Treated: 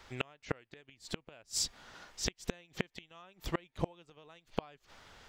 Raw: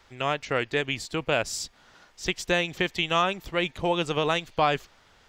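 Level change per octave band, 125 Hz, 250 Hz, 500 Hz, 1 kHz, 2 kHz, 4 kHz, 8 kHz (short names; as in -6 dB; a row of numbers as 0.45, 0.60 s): -10.0, -11.5, -16.0, -19.0, -17.0, -12.0, -3.0 dB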